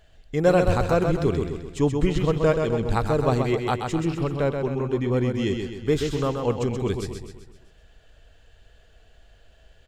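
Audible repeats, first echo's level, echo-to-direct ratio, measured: 5, −5.5 dB, −4.5 dB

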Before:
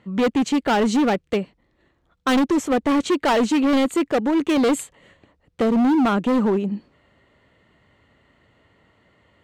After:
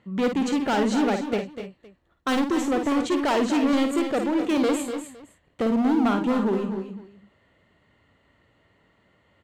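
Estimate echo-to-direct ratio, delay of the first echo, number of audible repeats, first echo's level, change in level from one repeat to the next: −4.5 dB, 53 ms, 4, −7.0 dB, repeats not evenly spaced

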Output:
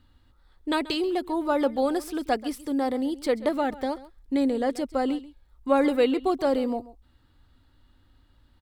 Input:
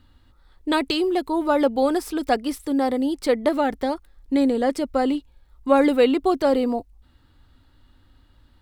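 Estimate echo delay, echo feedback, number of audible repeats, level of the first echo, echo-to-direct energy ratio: 134 ms, repeats not evenly spaced, 1, −18.0 dB, −18.0 dB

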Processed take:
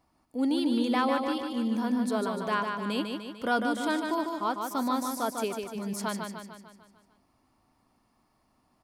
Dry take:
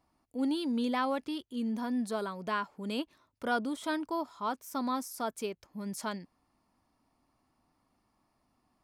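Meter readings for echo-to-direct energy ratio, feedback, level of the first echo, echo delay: −3.5 dB, 54%, −5.0 dB, 149 ms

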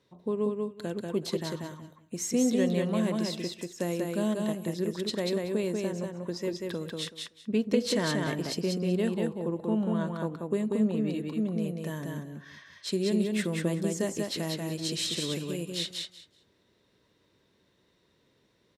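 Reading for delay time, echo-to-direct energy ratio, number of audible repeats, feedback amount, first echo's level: 189 ms, −3.0 dB, 3, 18%, −3.0 dB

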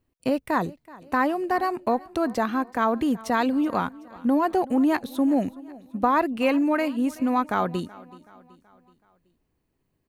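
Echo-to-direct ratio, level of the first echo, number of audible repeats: −20.0 dB, −21.0 dB, 3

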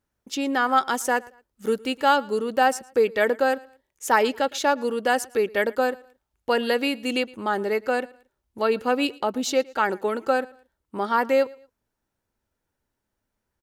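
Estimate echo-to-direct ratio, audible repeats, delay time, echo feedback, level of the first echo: −23.0 dB, 2, 113 ms, 32%, −23.5 dB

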